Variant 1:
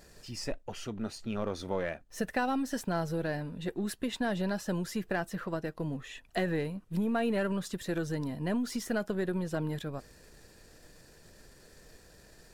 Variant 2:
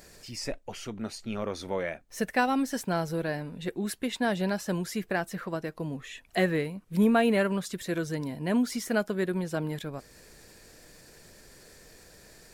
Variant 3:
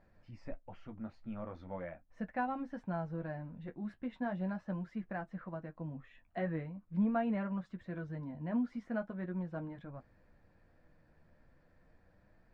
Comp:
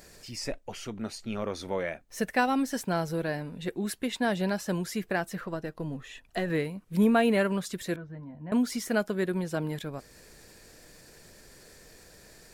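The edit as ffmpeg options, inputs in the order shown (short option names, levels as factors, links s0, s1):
-filter_complex "[1:a]asplit=3[s0][s1][s2];[s0]atrim=end=5.412[s3];[0:a]atrim=start=5.408:end=6.502[s4];[s1]atrim=start=6.498:end=7.962[s5];[2:a]atrim=start=7.958:end=8.522[s6];[s2]atrim=start=8.518[s7];[s3][s4]acrossfade=d=0.004:c1=hsin:c2=hsin[s8];[s8][s5]acrossfade=d=0.004:c1=hsin:c2=hsin[s9];[s9][s6]acrossfade=d=0.004:c1=hsin:c2=hsin[s10];[s10][s7]acrossfade=d=0.004:c1=hsin:c2=hsin"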